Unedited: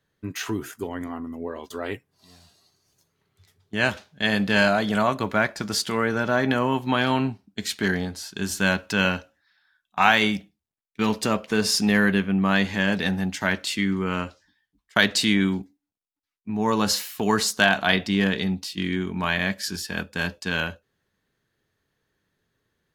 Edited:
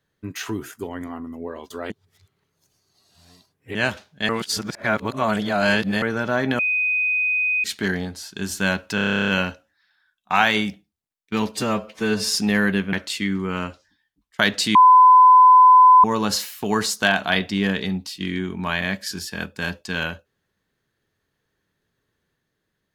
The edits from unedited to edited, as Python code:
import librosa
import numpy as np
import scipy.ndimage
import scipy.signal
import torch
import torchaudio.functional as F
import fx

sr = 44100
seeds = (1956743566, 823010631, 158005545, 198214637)

y = fx.edit(x, sr, fx.reverse_span(start_s=1.9, length_s=1.85),
    fx.reverse_span(start_s=4.29, length_s=1.73),
    fx.bleep(start_s=6.59, length_s=1.05, hz=2500.0, db=-18.0),
    fx.stutter(start_s=8.95, slice_s=0.03, count=12),
    fx.stretch_span(start_s=11.19, length_s=0.54, factor=1.5),
    fx.cut(start_s=12.33, length_s=1.17),
    fx.bleep(start_s=15.32, length_s=1.29, hz=1010.0, db=-7.0), tone=tone)